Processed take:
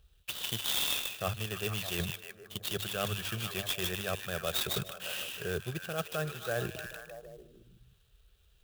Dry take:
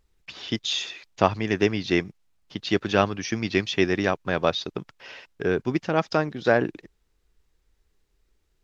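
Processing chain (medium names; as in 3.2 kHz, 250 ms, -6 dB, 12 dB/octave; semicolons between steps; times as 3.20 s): peaking EQ 3.3 kHz +12 dB 1.5 oct; hum notches 50/100 Hz; reverse; compression 4:1, threshold -32 dBFS, peak gain reduction 18 dB; reverse; high-pass 42 Hz; bass shelf 180 Hz +12 dB; static phaser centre 1.4 kHz, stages 8; repeats whose band climbs or falls 153 ms, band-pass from 3.1 kHz, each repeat -0.7 oct, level -2 dB; sampling jitter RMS 0.038 ms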